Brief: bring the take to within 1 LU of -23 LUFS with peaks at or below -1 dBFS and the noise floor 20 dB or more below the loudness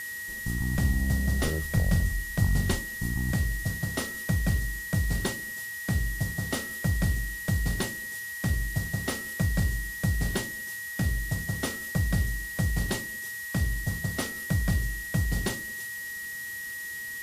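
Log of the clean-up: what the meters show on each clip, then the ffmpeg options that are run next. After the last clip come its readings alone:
steady tone 1900 Hz; tone level -35 dBFS; noise floor -37 dBFS; noise floor target -50 dBFS; loudness -29.5 LUFS; peak -12.5 dBFS; loudness target -23.0 LUFS
-> -af "bandreject=f=1.9k:w=30"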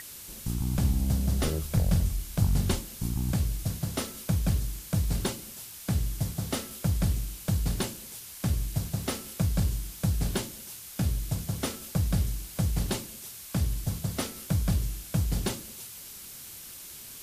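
steady tone none; noise floor -44 dBFS; noise floor target -51 dBFS
-> -af "afftdn=nr=7:nf=-44"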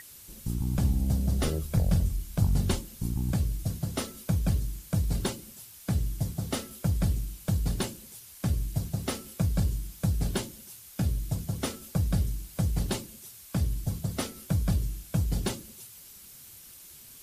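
noise floor -50 dBFS; noise floor target -51 dBFS
-> -af "afftdn=nr=6:nf=-50"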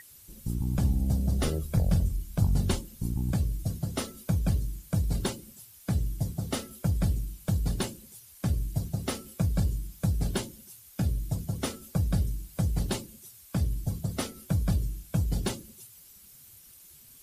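noise floor -53 dBFS; loudness -30.5 LUFS; peak -13.0 dBFS; loudness target -23.0 LUFS
-> -af "volume=7.5dB"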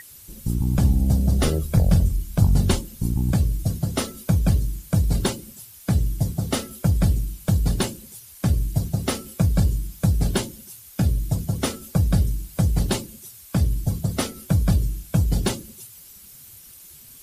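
loudness -23.0 LUFS; peak -5.5 dBFS; noise floor -46 dBFS

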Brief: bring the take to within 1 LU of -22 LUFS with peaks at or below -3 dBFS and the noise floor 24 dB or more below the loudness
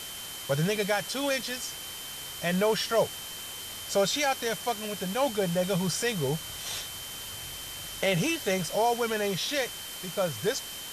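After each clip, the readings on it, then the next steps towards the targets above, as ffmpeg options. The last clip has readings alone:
steady tone 3100 Hz; tone level -42 dBFS; noise floor -40 dBFS; noise floor target -54 dBFS; loudness -29.5 LUFS; peak -14.5 dBFS; loudness target -22.0 LUFS
-> -af "bandreject=f=3.1k:w=30"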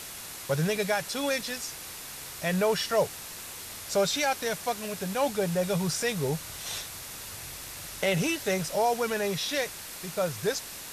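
steady tone none; noise floor -42 dBFS; noise floor target -54 dBFS
-> -af "afftdn=nr=12:nf=-42"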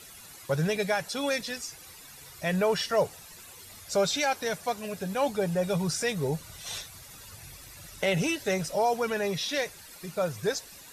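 noise floor -49 dBFS; noise floor target -54 dBFS
-> -af "afftdn=nr=6:nf=-49"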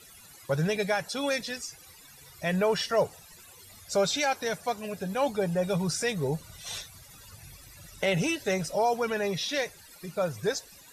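noise floor -52 dBFS; noise floor target -54 dBFS
-> -af "afftdn=nr=6:nf=-52"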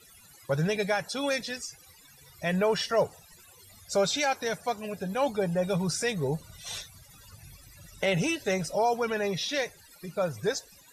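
noise floor -55 dBFS; loudness -29.5 LUFS; peak -14.5 dBFS; loudness target -22.0 LUFS
-> -af "volume=7.5dB"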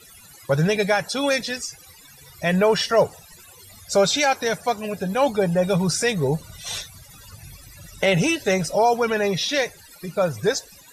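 loudness -22.0 LUFS; peak -7.0 dBFS; noise floor -48 dBFS

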